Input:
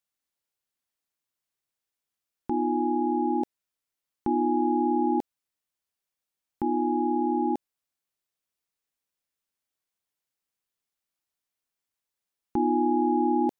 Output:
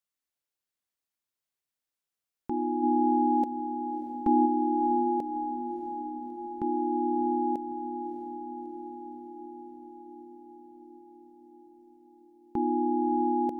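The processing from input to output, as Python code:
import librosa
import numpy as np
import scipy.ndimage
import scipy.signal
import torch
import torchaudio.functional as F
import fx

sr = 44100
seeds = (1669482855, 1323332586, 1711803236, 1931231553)

y = fx.comb(x, sr, ms=3.7, depth=0.99, at=(2.82, 4.45), fade=0.02)
y = fx.echo_diffused(y, sr, ms=633, feedback_pct=68, wet_db=-9.5)
y = y * librosa.db_to_amplitude(-3.5)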